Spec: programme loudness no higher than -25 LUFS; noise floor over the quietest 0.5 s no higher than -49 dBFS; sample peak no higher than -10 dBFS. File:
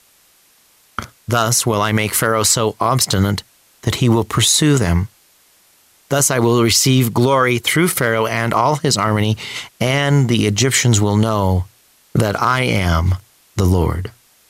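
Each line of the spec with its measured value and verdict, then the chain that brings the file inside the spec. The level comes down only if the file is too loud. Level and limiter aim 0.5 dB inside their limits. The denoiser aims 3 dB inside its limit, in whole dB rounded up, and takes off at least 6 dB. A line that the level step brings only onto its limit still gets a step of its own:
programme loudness -15.5 LUFS: fail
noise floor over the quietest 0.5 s -54 dBFS: pass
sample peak -3.5 dBFS: fail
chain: trim -10 dB

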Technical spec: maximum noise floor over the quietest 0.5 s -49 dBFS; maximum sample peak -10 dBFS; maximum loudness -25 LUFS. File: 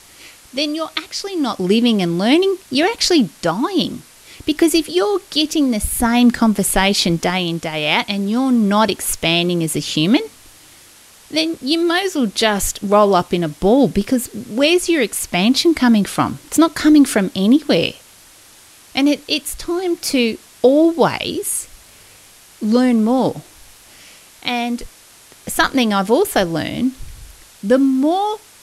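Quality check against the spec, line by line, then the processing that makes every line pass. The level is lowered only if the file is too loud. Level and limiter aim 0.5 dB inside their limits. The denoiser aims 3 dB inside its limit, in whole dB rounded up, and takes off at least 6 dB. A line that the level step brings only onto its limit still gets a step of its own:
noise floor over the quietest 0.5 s -45 dBFS: fail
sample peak -2.5 dBFS: fail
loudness -16.5 LUFS: fail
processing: trim -9 dB

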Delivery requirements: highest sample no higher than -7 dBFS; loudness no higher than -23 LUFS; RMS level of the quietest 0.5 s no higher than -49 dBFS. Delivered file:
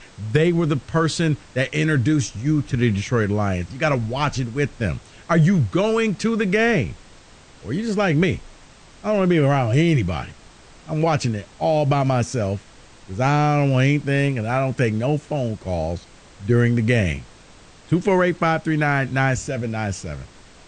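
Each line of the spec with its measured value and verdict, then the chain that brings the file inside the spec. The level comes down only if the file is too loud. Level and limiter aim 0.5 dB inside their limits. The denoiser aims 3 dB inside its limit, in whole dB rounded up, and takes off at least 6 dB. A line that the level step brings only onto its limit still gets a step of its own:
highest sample -5.5 dBFS: fail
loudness -21.0 LUFS: fail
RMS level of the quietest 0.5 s -47 dBFS: fail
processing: trim -2.5 dB

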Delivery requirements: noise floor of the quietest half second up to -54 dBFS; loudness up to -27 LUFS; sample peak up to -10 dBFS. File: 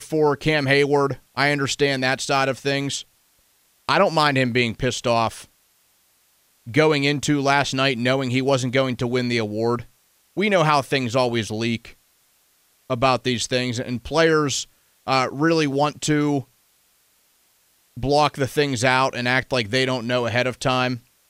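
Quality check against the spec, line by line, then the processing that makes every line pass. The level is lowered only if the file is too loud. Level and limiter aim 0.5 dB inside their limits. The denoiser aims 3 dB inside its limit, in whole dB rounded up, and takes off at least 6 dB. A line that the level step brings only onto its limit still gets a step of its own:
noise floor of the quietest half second -62 dBFS: pass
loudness -21.0 LUFS: fail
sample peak -4.0 dBFS: fail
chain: trim -6.5 dB

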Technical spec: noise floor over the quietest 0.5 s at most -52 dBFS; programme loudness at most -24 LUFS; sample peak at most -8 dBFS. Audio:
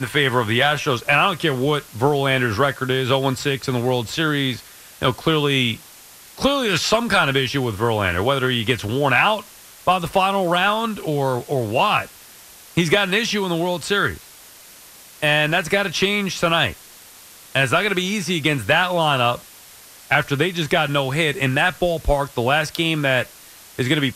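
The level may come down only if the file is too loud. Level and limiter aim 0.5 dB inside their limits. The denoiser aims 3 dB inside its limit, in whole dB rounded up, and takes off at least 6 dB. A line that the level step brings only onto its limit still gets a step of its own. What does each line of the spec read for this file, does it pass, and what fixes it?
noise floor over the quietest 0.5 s -44 dBFS: fail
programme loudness -19.5 LUFS: fail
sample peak -4.0 dBFS: fail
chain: noise reduction 6 dB, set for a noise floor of -44 dBFS; trim -5 dB

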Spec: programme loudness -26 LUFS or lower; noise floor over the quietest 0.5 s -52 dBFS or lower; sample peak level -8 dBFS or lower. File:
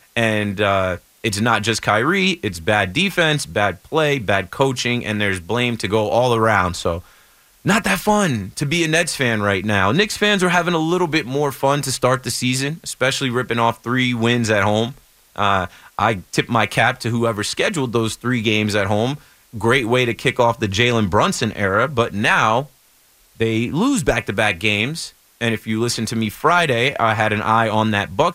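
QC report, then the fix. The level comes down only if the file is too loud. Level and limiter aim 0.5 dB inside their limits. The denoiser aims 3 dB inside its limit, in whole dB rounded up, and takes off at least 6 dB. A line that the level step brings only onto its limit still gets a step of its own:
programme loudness -18.0 LUFS: fail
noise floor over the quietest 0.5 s -54 dBFS: pass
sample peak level -3.0 dBFS: fail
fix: trim -8.5 dB

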